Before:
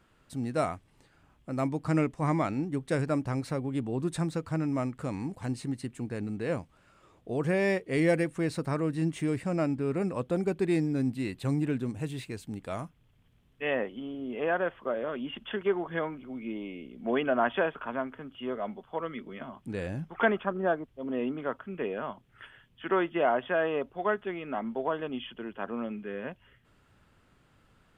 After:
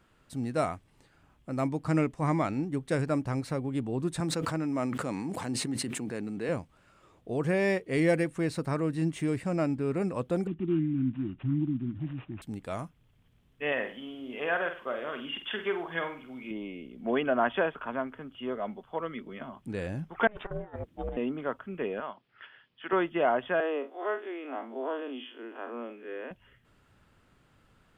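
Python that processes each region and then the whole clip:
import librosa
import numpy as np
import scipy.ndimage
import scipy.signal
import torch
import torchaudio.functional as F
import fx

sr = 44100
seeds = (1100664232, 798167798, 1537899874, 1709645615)

y = fx.chain(x, sr, fx.highpass(hz=180.0, slope=12),
    fx.sustainer(db_per_s=20.0), at=(4.2, 6.49))
y = fx.chain(y, sr, fx.block_float(bits=7),
    fx.brickwall_bandstop(low_hz=370.0, high_hz=4400.0),
    fx.resample_bad(factor=6, down='none', up='filtered'), at=(10.47, 12.42))
y = fx.chain(y, sr, fx.tilt_shelf(db=-6.5, hz=1100.0),
    fx.room_flutter(wall_m=8.1, rt60_s=0.36), at=(13.72, 16.51))
y = fx.chain(y, sr, fx.ring_mod(carrier_hz=210.0),
    fx.over_compress(threshold_db=-37.0, ratio=-0.5), at=(20.27, 21.17))
y = fx.chain(y, sr, fx.highpass(hz=540.0, slope=6),
    fx.resample_bad(factor=4, down='none', up='filtered'), at=(22.0, 22.93))
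y = fx.chain(y, sr, fx.spec_blur(span_ms=89.0),
    fx.steep_highpass(hz=250.0, slope=72), at=(23.6, 26.31))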